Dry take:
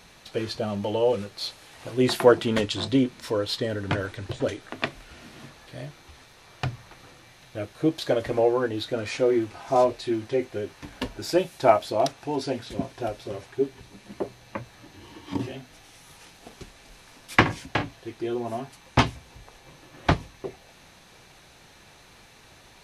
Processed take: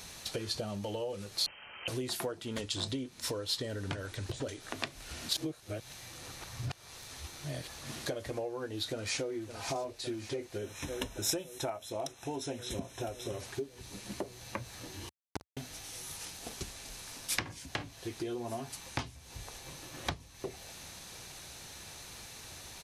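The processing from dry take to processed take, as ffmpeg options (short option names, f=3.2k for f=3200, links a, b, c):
-filter_complex "[0:a]asettb=1/sr,asplit=3[a][b][c];[a]atrim=end=1.464[d];[b]atrim=start=1.46:end=1.88,asetpts=PTS-STARTPTS,afade=t=in:d=0.004:c=qsin,afade=t=out:st=0.416:d=0.004:c=qsin,lowpass=f=2.7k:t=q:w=0.5098,lowpass=f=2.7k:t=q:w=0.6013,lowpass=f=2.7k:t=q:w=0.9,lowpass=f=2.7k:t=q:w=2.563,afreqshift=-3200[e];[c]atrim=start=1.876[f];[d][e]acrossfade=d=0.004:c1=hsin:c2=qsin[g];[g][f]acrossfade=d=0.004:c1=qsin:c2=hsin,asplit=2[h][i];[i]afade=t=in:st=8.86:d=0.01,afade=t=out:st=9.34:d=0.01,aecho=0:1:560|1120|1680|2240|2800|3360|3920|4480|5040|5600|6160|6720:0.237137|0.177853|0.13339|0.100042|0.0750317|0.0562738|0.0422054|0.031654|0.0237405|0.0178054|0.013354|0.0100155[j];[h][j]amix=inputs=2:normalize=0,asettb=1/sr,asplit=3[k][l][m];[k]atrim=end=10.584[n];[l]atrim=start=10.58:end=13.4,asetpts=PTS-STARTPTS,afade=t=in:d=0.004:c=qsin,afade=t=out:st=2.816:d=0.004:c=qsin,asuperstop=centerf=4600:order=20:qfactor=5.1[o];[m]atrim=start=13.396[p];[n][o]acrossfade=d=0.004:c1=hsin:c2=qsin[q];[q][p]acrossfade=d=0.004:c1=qsin:c2=hsin,asettb=1/sr,asplit=3[r][s][t];[r]atrim=end=15.094[u];[s]atrim=start=15.09:end=15.57,asetpts=PTS-STARTPTS,afade=t=in:d=0.004:c=qsin,afade=t=out:st=0.476:d=0.004:c=qsin,acrusher=bits=2:mix=0:aa=0.5[v];[t]atrim=start=15.566[w];[u][v]acrossfade=d=0.004:c1=hsin:c2=qsin[x];[x][w]acrossfade=d=0.004:c1=qsin:c2=hsin,asplit=3[y][z][aa];[y]atrim=end=5.292[ab];[z]atrim=start=5.288:end=8.062,asetpts=PTS-STARTPTS,areverse[ac];[aa]atrim=start=8.058[ad];[ab][ac]acrossfade=d=0.004:c1=hsin:c2=hsin[ae];[ae][ad]acrossfade=d=0.004:c1=hsin:c2=hsin,equalizer=f=78:w=1.2:g=6,acompressor=threshold=-34dB:ratio=12,bass=f=250:g=-1,treble=f=4k:g=11"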